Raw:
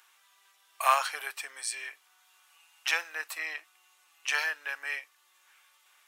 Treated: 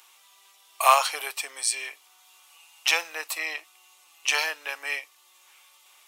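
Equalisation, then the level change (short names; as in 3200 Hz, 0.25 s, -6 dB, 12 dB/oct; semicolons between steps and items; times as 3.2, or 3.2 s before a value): bell 1600 Hz -11.5 dB 0.61 oct; +9.0 dB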